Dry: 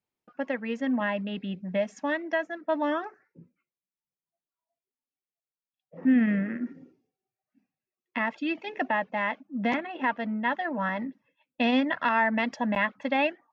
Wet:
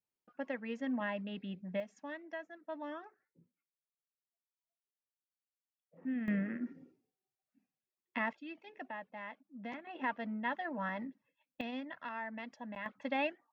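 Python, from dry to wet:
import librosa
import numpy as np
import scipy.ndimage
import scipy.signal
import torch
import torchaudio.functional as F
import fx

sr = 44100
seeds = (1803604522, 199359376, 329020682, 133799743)

y = fx.gain(x, sr, db=fx.steps((0.0, -9.0), (1.8, -16.0), (6.28, -7.0), (8.33, -17.5), (9.87, -9.0), (11.61, -18.0), (12.86, -9.0)))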